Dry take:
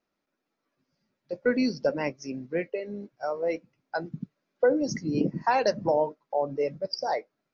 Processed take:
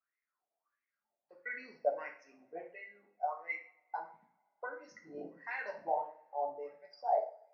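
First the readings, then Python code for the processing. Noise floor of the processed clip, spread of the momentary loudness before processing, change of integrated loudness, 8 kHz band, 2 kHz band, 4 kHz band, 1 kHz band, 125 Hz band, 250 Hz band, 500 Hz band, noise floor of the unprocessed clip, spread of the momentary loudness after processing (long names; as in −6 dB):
below −85 dBFS, 12 LU, −11.0 dB, can't be measured, −7.0 dB, below −25 dB, −6.5 dB, below −30 dB, −27.0 dB, −12.5 dB, −83 dBFS, 16 LU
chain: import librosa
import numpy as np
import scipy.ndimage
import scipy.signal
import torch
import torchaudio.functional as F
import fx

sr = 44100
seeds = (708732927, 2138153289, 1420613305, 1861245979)

y = fx.wah_lfo(x, sr, hz=1.5, low_hz=650.0, high_hz=2100.0, q=12.0)
y = fx.rev_double_slope(y, sr, seeds[0], early_s=0.44, late_s=2.0, knee_db=-28, drr_db=0.5)
y = F.gain(torch.from_numpy(y), 2.5).numpy()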